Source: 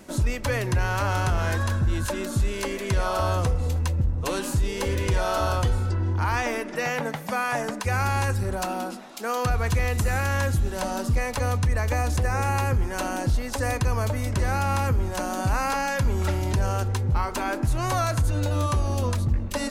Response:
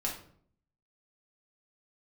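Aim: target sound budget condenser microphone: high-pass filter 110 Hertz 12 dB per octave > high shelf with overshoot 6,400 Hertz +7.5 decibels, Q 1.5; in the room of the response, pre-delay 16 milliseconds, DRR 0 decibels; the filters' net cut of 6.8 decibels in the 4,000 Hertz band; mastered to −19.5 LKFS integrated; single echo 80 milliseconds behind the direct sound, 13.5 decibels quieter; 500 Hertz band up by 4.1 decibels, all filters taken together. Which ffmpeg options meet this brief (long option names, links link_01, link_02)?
-filter_complex "[0:a]equalizer=frequency=500:width_type=o:gain=5,equalizer=frequency=4000:width_type=o:gain=-7.5,aecho=1:1:80:0.211,asplit=2[link_01][link_02];[1:a]atrim=start_sample=2205,adelay=16[link_03];[link_02][link_03]afir=irnorm=-1:irlink=0,volume=-4dB[link_04];[link_01][link_04]amix=inputs=2:normalize=0,highpass=110,highshelf=frequency=6400:width_type=q:width=1.5:gain=7.5,volume=3.5dB"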